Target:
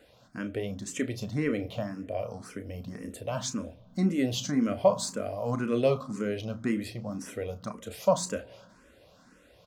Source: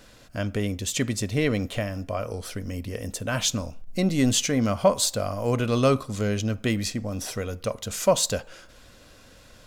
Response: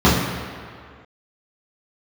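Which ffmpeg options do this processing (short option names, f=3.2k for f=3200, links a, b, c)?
-filter_complex "[0:a]highpass=f=160:p=1,highshelf=f=2.2k:g=-9,asplit=2[a][b];[b]adelay=34,volume=-11dB[c];[a][c]amix=inputs=2:normalize=0,asplit=2[d][e];[1:a]atrim=start_sample=2205[f];[e][f]afir=irnorm=-1:irlink=0,volume=-44dB[g];[d][g]amix=inputs=2:normalize=0,asplit=2[h][i];[i]afreqshift=1.9[j];[h][j]amix=inputs=2:normalize=1,volume=-1dB"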